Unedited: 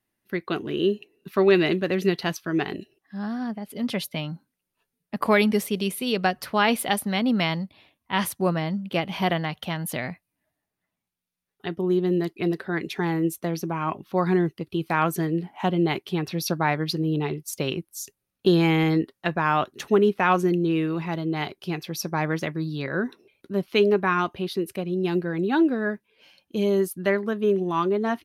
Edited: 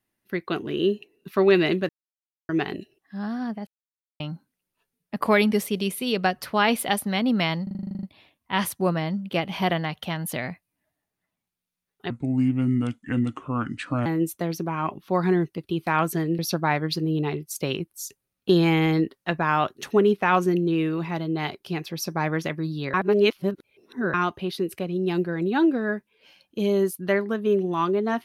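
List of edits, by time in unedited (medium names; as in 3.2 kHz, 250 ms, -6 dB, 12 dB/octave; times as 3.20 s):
1.89–2.49 s: mute
3.67–4.20 s: mute
7.63 s: stutter 0.04 s, 11 plays
11.70–13.09 s: speed 71%
15.42–16.36 s: delete
22.91–24.11 s: reverse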